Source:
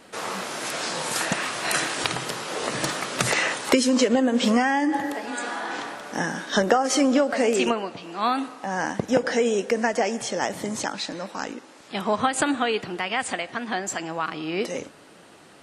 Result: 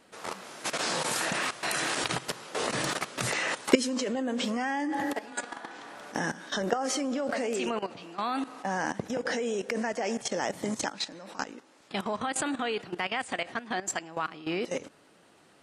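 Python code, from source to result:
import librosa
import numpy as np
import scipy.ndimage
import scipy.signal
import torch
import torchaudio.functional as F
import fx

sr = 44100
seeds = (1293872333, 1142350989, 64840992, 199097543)

y = fx.level_steps(x, sr, step_db=15)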